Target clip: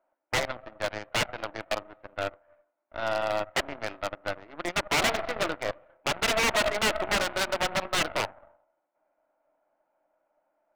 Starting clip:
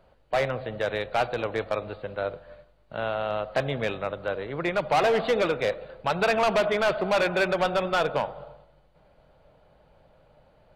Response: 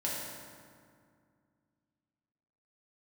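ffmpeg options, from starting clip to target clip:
-af "highpass=f=280:w=0.5412,highpass=f=280:w=1.3066,equalizer=f=300:t=q:w=4:g=10,equalizer=f=450:t=q:w=4:g=-10,equalizer=f=650:t=q:w=4:g=9,equalizer=f=930:t=q:w=4:g=7,equalizer=f=1.4k:t=q:w=4:g=6,equalizer=f=2.2k:t=q:w=4:g=4,lowpass=f=2.4k:w=0.5412,lowpass=f=2.4k:w=1.3066,aeval=exprs='0.501*(cos(1*acos(clip(val(0)/0.501,-1,1)))-cos(1*PI/2))+0.0631*(cos(7*acos(clip(val(0)/0.501,-1,1)))-cos(7*PI/2))+0.0224*(cos(8*acos(clip(val(0)/0.501,-1,1)))-cos(8*PI/2))':c=same,aeval=exprs='0.126*(abs(mod(val(0)/0.126+3,4)-2)-1)':c=same"

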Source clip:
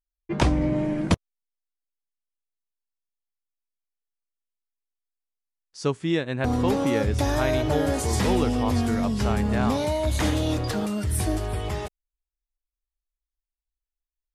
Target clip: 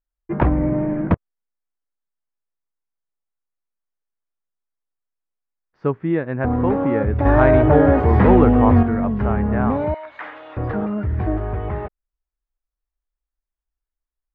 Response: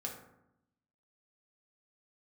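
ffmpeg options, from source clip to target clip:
-filter_complex "[0:a]lowpass=f=1.8k:w=0.5412,lowpass=f=1.8k:w=1.3066,asettb=1/sr,asplit=3[a][b][c];[a]atrim=end=7.254[d];[b]atrim=start=7.25:end=8.83,asetpts=PTS-STARTPTS,afade=t=in:d=0.004:c=qsin,afade=t=out:st=1.576:d=0.004:c=qsin,acontrast=70[e];[c]atrim=start=8.826[f];[d][e]acrossfade=d=0.004:c1=hsin:c2=qsin[g];[g][f]acrossfade=d=0.004:c1=qsin:c2=hsin,asettb=1/sr,asplit=3[h][i][j];[h]atrim=end=9.944[k];[i]atrim=start=9.94:end=10.57,asetpts=PTS-STARTPTS,afade=t=in:d=0.004:c=qsin,afade=t=out:st=0.626:d=0.004:c=qsin,highpass=1.3k[l];[j]atrim=start=10.566[m];[k][l]acrossfade=d=0.004:c1=hsin:c2=qsin[n];[n][m]acrossfade=d=0.004:c1=qsin:c2=hsin,volume=4dB"

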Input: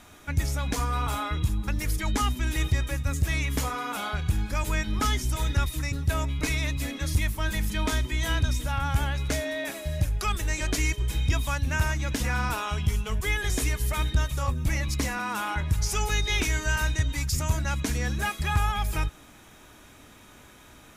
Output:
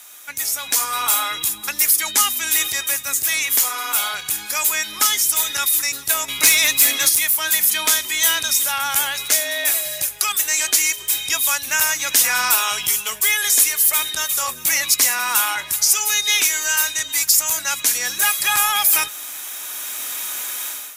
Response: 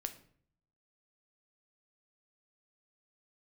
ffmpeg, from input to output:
-filter_complex "[0:a]highpass=f=900:p=1,aemphasis=mode=production:type=riaa,dynaudnorm=f=530:g=3:m=16dB,asplit=2[a][b];[b]alimiter=limit=-8dB:level=0:latency=1:release=375,volume=0.5dB[c];[a][c]amix=inputs=2:normalize=0,asettb=1/sr,asplit=3[d][e][f];[d]atrim=end=6.284[g];[e]atrim=start=6.28:end=7.09,asetpts=PTS-STARTPTS,afade=t=in:d=0.004:c=qsin,afade=t=out:st=0.806:d=0.004:c=qsin,acontrast=53[h];[f]atrim=start=7.086[i];[g][h]acrossfade=d=0.004:c1=hsin:c2=qsin[j];[j][i]acrossfade=d=0.004:c1=qsin:c2=hsin,volume=-4dB"

